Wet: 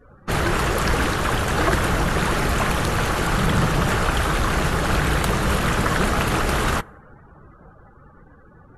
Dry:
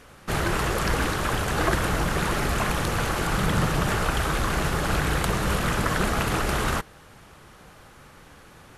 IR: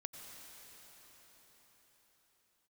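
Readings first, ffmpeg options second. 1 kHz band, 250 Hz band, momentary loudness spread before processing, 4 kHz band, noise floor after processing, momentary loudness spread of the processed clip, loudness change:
+4.0 dB, +4.0 dB, 2 LU, +3.5 dB, -49 dBFS, 2 LU, +4.0 dB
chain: -filter_complex "[0:a]asplit=2[s0][s1];[1:a]atrim=start_sample=2205[s2];[s1][s2]afir=irnorm=-1:irlink=0,volume=0.141[s3];[s0][s3]amix=inputs=2:normalize=0,afftdn=nr=32:nf=-45,acontrast=84,volume=0.668"

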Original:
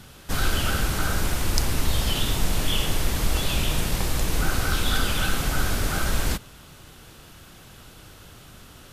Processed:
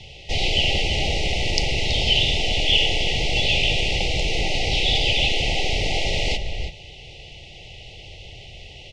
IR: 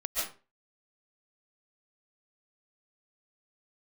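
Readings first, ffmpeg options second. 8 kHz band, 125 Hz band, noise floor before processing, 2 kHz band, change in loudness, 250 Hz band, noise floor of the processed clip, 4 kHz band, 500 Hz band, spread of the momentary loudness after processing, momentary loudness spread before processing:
-4.0 dB, 0.0 dB, -48 dBFS, +5.5 dB, +5.0 dB, -2.0 dB, -42 dBFS, +9.5 dB, +5.5 dB, 22 LU, 2 LU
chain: -filter_complex "[0:a]asplit=2[s0][s1];[s1]adelay=326.5,volume=0.398,highshelf=f=4000:g=-7.35[s2];[s0][s2]amix=inputs=2:normalize=0,afftfilt=real='re*(1-between(b*sr/4096,890,1900))':imag='im*(1-between(b*sr/4096,890,1900))':win_size=4096:overlap=0.75,acrossover=split=160[s3][s4];[s3]volume=23.7,asoftclip=hard,volume=0.0422[s5];[s4]highpass=f=370:w=0.5412,highpass=f=370:w=1.3066,equalizer=f=1000:t=q:w=4:g=-8,equalizer=f=1500:t=q:w=4:g=3,equalizer=f=2800:t=q:w=4:g=8,lowpass=f=5400:w=0.5412,lowpass=f=5400:w=1.3066[s6];[s5][s6]amix=inputs=2:normalize=0,volume=2.11" -ar 32000 -c:a libmp3lame -b:a 96k

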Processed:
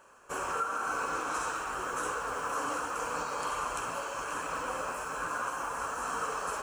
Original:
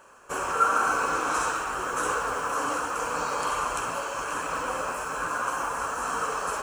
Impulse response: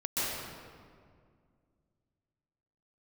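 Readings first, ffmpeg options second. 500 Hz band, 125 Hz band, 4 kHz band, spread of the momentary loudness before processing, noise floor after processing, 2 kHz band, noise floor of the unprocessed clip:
-6.0 dB, -5.5 dB, -6.0 dB, 7 LU, -39 dBFS, -6.0 dB, -34 dBFS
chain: -af "alimiter=limit=0.133:level=0:latency=1:release=348,volume=0.562"

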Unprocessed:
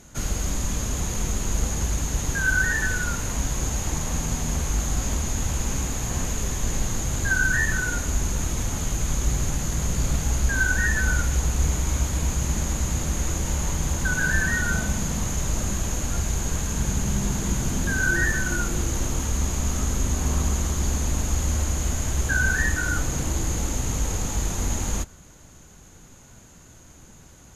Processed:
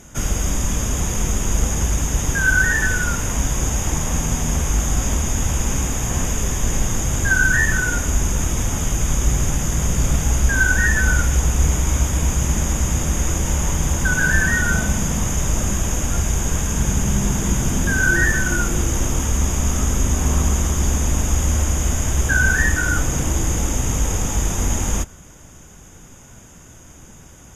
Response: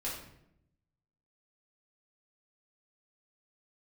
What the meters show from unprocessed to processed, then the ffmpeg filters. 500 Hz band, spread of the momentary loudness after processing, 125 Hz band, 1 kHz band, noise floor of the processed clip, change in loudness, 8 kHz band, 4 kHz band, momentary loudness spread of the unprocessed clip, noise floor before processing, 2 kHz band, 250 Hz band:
+5.5 dB, 5 LU, +5.5 dB, +5.5 dB, -43 dBFS, +5.5 dB, +5.5 dB, +4.0 dB, 5 LU, -48 dBFS, +5.5 dB, +5.5 dB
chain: -af "asuperstop=centerf=4200:order=4:qfactor=4.6,volume=1.88"

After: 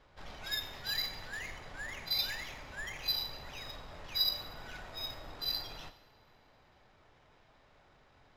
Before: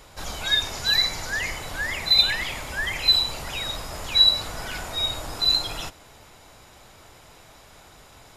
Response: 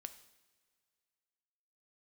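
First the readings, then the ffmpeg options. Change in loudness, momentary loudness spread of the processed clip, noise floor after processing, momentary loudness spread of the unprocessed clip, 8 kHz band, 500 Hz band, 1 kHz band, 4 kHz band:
-15.0 dB, 15 LU, -65 dBFS, 15 LU, -16.5 dB, -13.5 dB, -13.5 dB, -15.5 dB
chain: -filter_complex "[0:a]acrusher=samples=5:mix=1:aa=0.000001,adynamicsmooth=sensitivity=3:basefreq=4000[s0];[1:a]atrim=start_sample=2205[s1];[s0][s1]afir=irnorm=-1:irlink=0,volume=0.376"

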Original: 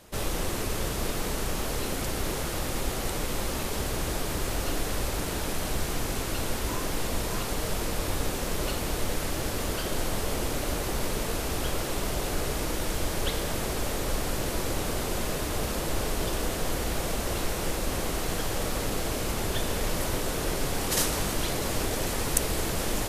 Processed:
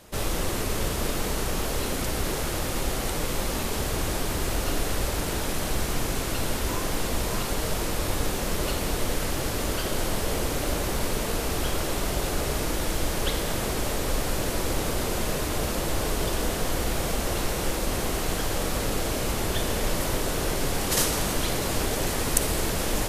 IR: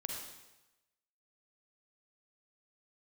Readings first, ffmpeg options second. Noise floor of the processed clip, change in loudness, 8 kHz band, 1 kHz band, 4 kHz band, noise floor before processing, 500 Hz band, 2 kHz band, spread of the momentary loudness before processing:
-29 dBFS, +2.5 dB, +2.5 dB, +2.5 dB, +2.5 dB, -32 dBFS, +2.5 dB, +2.5 dB, 2 LU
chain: -filter_complex "[0:a]asplit=2[s0][s1];[1:a]atrim=start_sample=2205[s2];[s1][s2]afir=irnorm=-1:irlink=0,volume=0.596[s3];[s0][s3]amix=inputs=2:normalize=0,volume=0.891"

